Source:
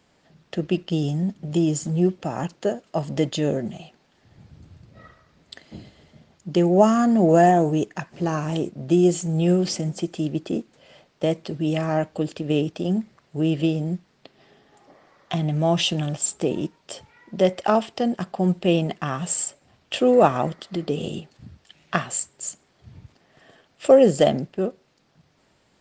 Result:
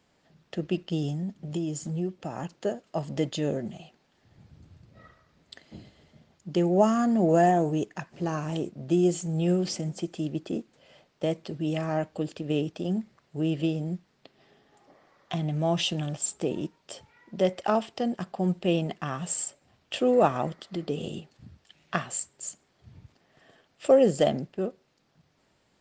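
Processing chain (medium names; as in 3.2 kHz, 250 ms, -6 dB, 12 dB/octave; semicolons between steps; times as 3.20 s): 1.13–2.55 s: compression 2:1, threshold -25 dBFS, peak gain reduction 6.5 dB; trim -5.5 dB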